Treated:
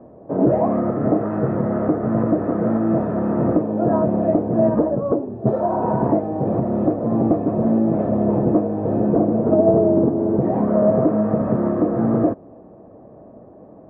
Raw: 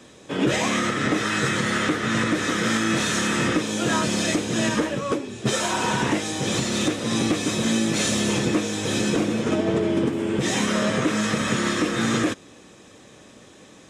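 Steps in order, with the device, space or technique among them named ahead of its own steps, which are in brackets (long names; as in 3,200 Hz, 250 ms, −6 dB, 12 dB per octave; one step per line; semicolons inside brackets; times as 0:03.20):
under water (low-pass filter 880 Hz 24 dB per octave; parametric band 660 Hz +11 dB 0.23 octaves)
0:04.79–0:05.83: high shelf with overshoot 4,000 Hz +13 dB, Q 1.5
level +5 dB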